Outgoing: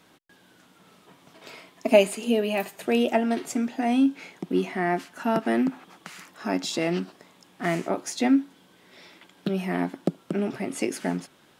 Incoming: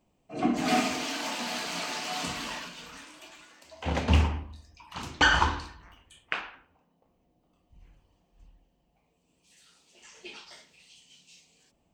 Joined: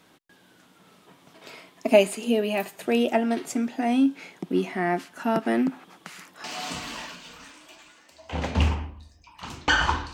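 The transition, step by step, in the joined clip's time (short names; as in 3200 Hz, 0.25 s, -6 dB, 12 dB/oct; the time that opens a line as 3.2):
outgoing
6.44 switch to incoming from 1.97 s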